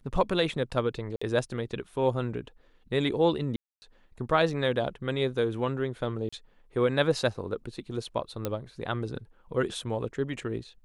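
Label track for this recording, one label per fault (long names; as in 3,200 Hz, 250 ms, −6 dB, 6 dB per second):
1.160000	1.220000	drop-out 55 ms
3.560000	3.820000	drop-out 260 ms
6.290000	6.330000	drop-out 35 ms
8.450000	8.450000	click −15 dBFS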